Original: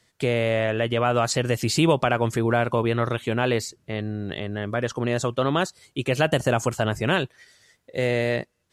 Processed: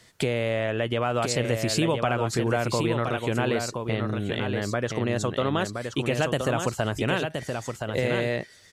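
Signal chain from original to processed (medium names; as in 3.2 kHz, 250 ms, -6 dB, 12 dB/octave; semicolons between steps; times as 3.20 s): compression 2.5:1, threshold -37 dBFS, peak gain reduction 15 dB; on a send: delay 1021 ms -5.5 dB; on the sum: trim +8.5 dB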